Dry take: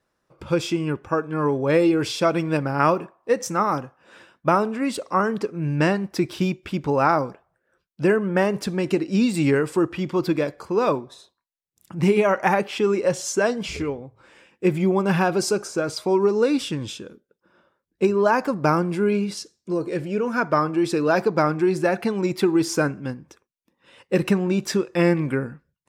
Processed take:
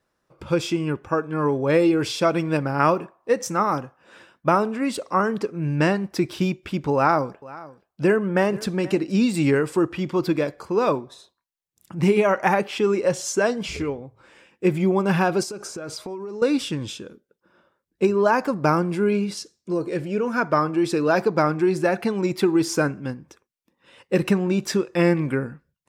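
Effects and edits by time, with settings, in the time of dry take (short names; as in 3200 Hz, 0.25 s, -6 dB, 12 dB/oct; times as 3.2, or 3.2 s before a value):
6.94–9.12 echo 0.479 s -19.5 dB
15.43–16.42 compressor 16:1, threshold -29 dBFS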